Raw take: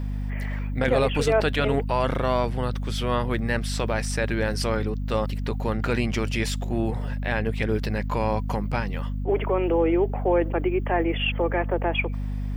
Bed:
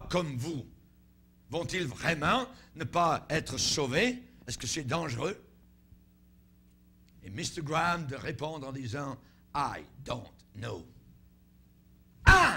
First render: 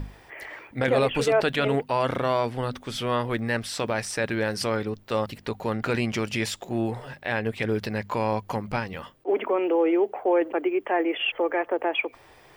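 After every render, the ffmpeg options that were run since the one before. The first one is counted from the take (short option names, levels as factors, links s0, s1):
-af "bandreject=f=50:t=h:w=6,bandreject=f=100:t=h:w=6,bandreject=f=150:t=h:w=6,bandreject=f=200:t=h:w=6,bandreject=f=250:t=h:w=6"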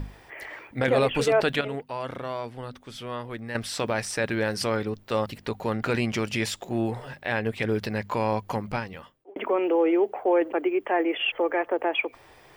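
-filter_complex "[0:a]asplit=4[s0][s1][s2][s3];[s0]atrim=end=1.612[s4];[s1]atrim=start=1.608:end=3.552,asetpts=PTS-STARTPTS,volume=0.376[s5];[s2]atrim=start=3.548:end=9.36,asetpts=PTS-STARTPTS,afade=t=out:st=5.092:d=0.72[s6];[s3]atrim=start=9.36,asetpts=PTS-STARTPTS,afade=t=in:d=0.004:c=hsin[s7];[s4][s5]acrossfade=d=0.004:c1=hsin:c2=hsin[s8];[s6][s7]concat=n=2:v=0:a=1[s9];[s8][s9]acrossfade=d=0.004:c1=hsin:c2=hsin"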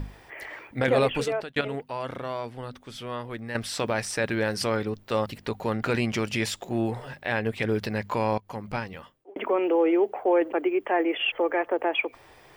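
-filter_complex "[0:a]asplit=3[s0][s1][s2];[s0]atrim=end=1.56,asetpts=PTS-STARTPTS,afade=t=out:st=1.06:d=0.5[s3];[s1]atrim=start=1.56:end=8.38,asetpts=PTS-STARTPTS,afade=t=in:d=0.004:c=hsin,afade=t=out:st=6.816:d=0.004:c=hsin:silence=0.112202[s4];[s2]atrim=start=8.38,asetpts=PTS-STARTPTS,afade=t=in:d=0.45:silence=0.112202[s5];[s3][s4][s5]concat=n=3:v=0:a=1"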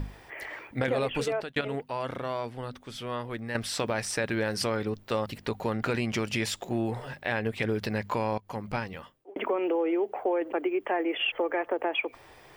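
-af "acompressor=threshold=0.0631:ratio=6"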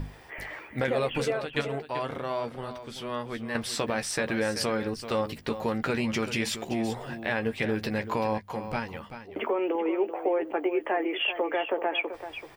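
-filter_complex "[0:a]asplit=2[s0][s1];[s1]adelay=13,volume=0.398[s2];[s0][s2]amix=inputs=2:normalize=0,asplit=2[s3][s4];[s4]aecho=0:1:385:0.282[s5];[s3][s5]amix=inputs=2:normalize=0"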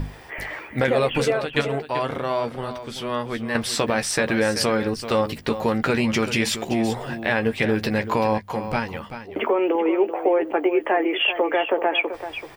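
-af "volume=2.24"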